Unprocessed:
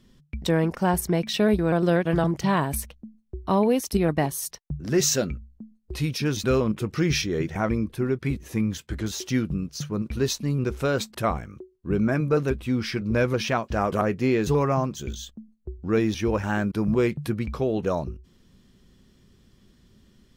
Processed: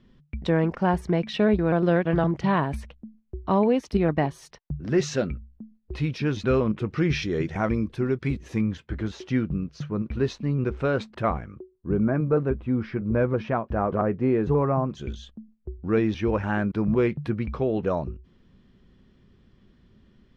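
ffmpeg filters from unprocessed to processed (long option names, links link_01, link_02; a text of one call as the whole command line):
ffmpeg -i in.wav -af "asetnsamples=nb_out_samples=441:pad=0,asendcmd='7.22 lowpass f 5100;8.62 lowpass f 2400;11.55 lowpass f 1300;14.9 lowpass f 2800',lowpass=2900" out.wav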